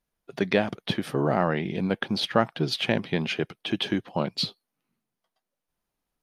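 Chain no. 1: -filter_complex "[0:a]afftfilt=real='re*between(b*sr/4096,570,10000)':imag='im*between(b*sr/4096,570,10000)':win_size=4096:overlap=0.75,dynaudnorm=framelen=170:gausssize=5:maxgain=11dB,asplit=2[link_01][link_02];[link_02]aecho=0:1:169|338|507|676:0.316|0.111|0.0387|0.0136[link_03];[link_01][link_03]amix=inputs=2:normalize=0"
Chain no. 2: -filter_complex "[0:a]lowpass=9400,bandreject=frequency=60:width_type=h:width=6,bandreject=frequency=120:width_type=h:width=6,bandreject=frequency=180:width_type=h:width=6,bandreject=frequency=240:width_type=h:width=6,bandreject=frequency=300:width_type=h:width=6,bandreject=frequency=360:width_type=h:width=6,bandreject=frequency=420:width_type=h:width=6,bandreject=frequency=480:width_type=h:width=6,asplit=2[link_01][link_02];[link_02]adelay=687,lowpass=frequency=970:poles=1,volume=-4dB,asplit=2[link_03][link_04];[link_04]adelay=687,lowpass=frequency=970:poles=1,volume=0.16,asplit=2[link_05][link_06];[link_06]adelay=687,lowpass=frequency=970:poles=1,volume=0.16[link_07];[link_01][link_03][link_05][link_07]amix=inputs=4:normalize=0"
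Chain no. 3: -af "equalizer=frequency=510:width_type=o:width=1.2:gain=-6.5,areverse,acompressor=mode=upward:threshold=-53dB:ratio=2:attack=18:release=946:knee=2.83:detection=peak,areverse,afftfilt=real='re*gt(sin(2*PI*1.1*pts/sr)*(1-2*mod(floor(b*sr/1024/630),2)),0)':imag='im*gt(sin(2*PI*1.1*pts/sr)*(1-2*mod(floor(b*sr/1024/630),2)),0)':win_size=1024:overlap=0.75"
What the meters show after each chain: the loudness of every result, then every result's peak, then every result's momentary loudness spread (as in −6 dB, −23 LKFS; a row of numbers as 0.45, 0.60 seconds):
−21.5, −27.0, −32.0 LKFS; −1.0, −5.5, −13.5 dBFS; 10, 12, 6 LU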